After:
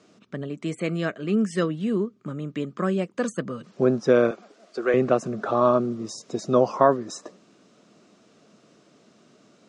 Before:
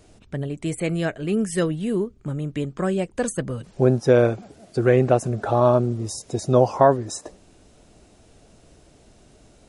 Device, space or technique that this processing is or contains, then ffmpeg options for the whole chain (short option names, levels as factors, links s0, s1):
television speaker: -filter_complex "[0:a]highpass=f=160:w=0.5412,highpass=f=160:w=1.3066,equalizer=f=210:t=q:w=4:g=4,equalizer=f=820:t=q:w=4:g=-6,equalizer=f=1200:t=q:w=4:g=8,lowpass=f=6800:w=0.5412,lowpass=f=6800:w=1.3066,asettb=1/sr,asplit=3[s0][s1][s2];[s0]atrim=end=4.314[s3];[s1]atrim=start=4.31:end=4.94,asetpts=PTS-STARTPTS,afade=t=in:d=0.004:c=qsin,afade=t=out:st=0.626:d=0.004:c=qsin,highpass=430[s4];[s2]atrim=start=4.936[s5];[s3][s4]acrossfade=d=0.004:c1=hsin:c2=qsin[s6];[s6][s5]acrossfade=d=0.004:c1=qsin:c2=hsin,volume=0.794"